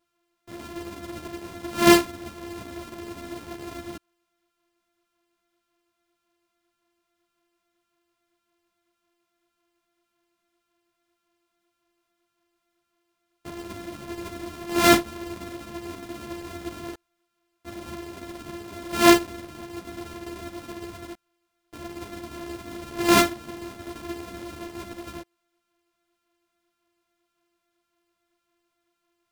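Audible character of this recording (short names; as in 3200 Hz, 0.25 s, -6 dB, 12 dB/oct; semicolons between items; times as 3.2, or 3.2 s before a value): a buzz of ramps at a fixed pitch in blocks of 128 samples; a shimmering, thickened sound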